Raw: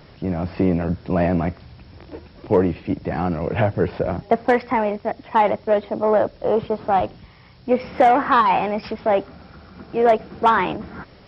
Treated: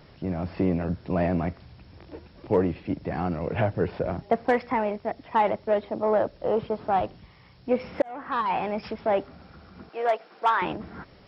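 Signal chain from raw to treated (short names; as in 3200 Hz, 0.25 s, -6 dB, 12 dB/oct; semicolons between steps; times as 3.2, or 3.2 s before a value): 8.02–8.73 fade in; 9.89–10.62 HPF 630 Hz 12 dB/oct; gain -5.5 dB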